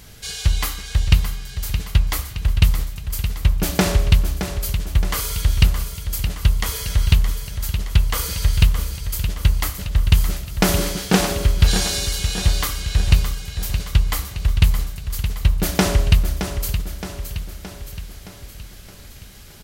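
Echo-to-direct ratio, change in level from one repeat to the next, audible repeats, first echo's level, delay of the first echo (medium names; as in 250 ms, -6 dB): -7.5 dB, -5.0 dB, 6, -9.0 dB, 619 ms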